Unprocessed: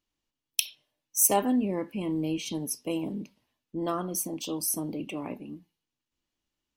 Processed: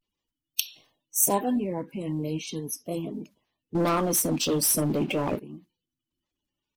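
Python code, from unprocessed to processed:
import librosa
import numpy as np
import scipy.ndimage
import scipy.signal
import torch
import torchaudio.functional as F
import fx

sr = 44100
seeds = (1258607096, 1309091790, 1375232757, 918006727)

y = fx.spec_quant(x, sr, step_db=30)
y = fx.leveller(y, sr, passes=3, at=(3.76, 5.38))
y = fx.vibrato(y, sr, rate_hz=0.38, depth_cents=61.0)
y = fx.sustainer(y, sr, db_per_s=110.0, at=(0.66, 1.33))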